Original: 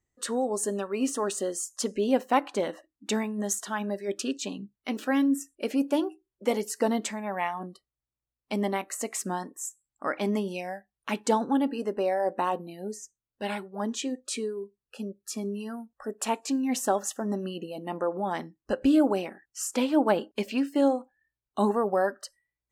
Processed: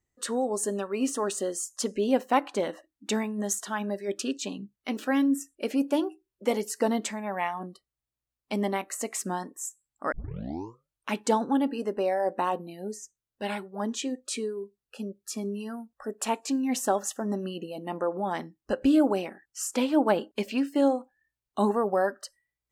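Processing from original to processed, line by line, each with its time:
10.12 s: tape start 0.99 s

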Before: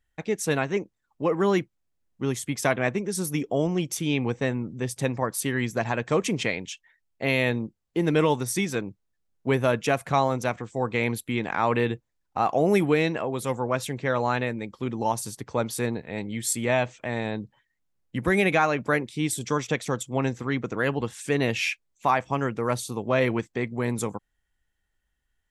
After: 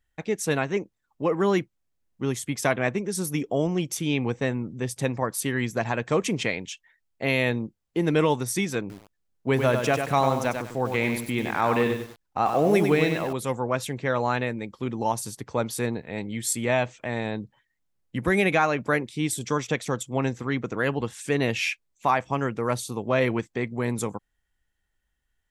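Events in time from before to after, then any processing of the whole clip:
8.80–13.33 s: bit-crushed delay 97 ms, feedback 35%, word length 7-bit, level -5.5 dB

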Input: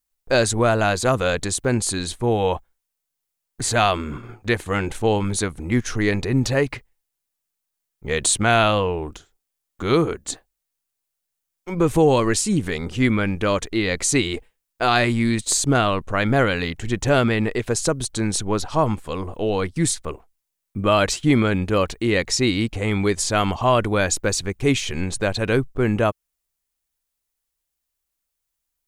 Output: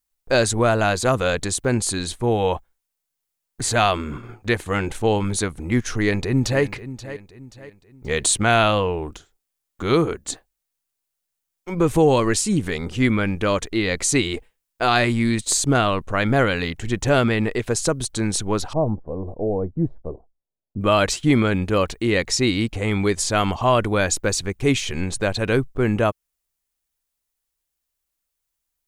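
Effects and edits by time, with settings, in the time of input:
5.96–6.63 s: echo throw 530 ms, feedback 40%, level -14 dB
18.73–20.81 s: Chebyshev low-pass 690 Hz, order 3

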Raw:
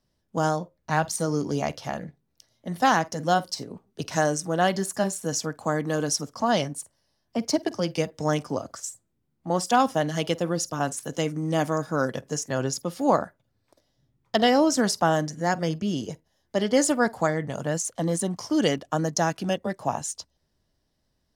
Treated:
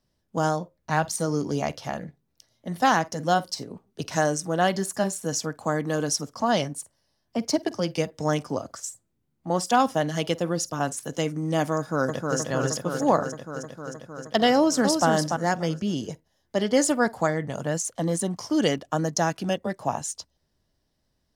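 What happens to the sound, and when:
11.77–12.38 s: echo throw 310 ms, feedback 80%, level -3 dB
14.55–15.07 s: echo throw 290 ms, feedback 15%, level -5 dB

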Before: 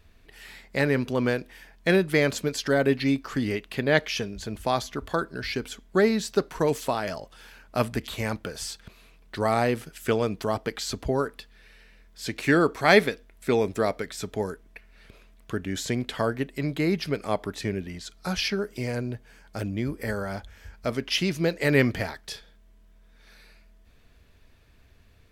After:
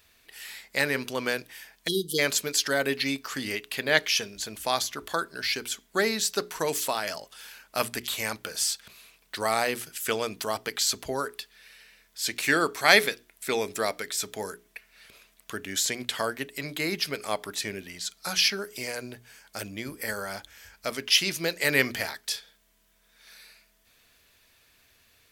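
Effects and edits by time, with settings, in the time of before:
1.88–2.19 s: spectral selection erased 490–2900 Hz
whole clip: tilt EQ +3.5 dB/octave; hum notches 60/120/180/240/300/360/420 Hz; trim -1 dB

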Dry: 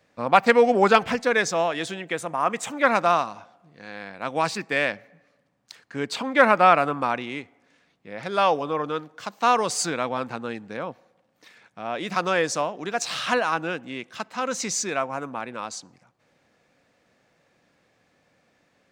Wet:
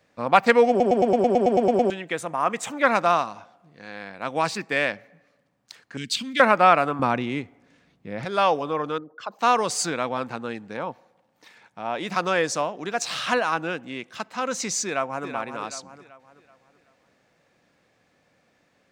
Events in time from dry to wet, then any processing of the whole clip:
0.69 s: stutter in place 0.11 s, 11 plays
5.97–6.40 s: FFT filter 240 Hz 0 dB, 380 Hz -15 dB, 830 Hz -28 dB, 1.5 kHz -11 dB, 3.1 kHz +6 dB
6.99–8.25 s: bass shelf 300 Hz +12 dB
8.98–9.39 s: resonances exaggerated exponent 2
10.75–12.12 s: peaking EQ 880 Hz +8 dB 0.24 oct
14.85–15.26 s: echo throw 380 ms, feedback 40%, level -8 dB

